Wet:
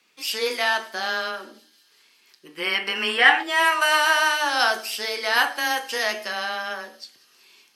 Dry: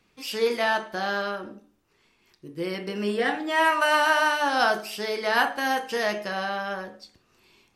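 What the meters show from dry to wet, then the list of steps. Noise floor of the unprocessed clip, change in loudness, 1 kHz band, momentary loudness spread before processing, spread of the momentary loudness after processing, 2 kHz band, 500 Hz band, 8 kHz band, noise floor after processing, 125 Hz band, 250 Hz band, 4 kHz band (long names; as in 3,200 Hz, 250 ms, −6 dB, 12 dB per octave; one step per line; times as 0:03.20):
−67 dBFS, +3.5 dB, +1.0 dB, 13 LU, 12 LU, +5.0 dB, −2.5 dB, +7.5 dB, −60 dBFS, below −10 dB, −6.5 dB, +7.5 dB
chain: gain on a spectral selection 0:02.45–0:03.43, 710–3,300 Hz +10 dB
high-pass filter 220 Hz 12 dB per octave
tilt shelving filter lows −6 dB, about 1,200 Hz
frequency shifter +14 Hz
delay with a high-pass on its return 188 ms, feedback 81%, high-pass 5,400 Hz, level −20 dB
level +1.5 dB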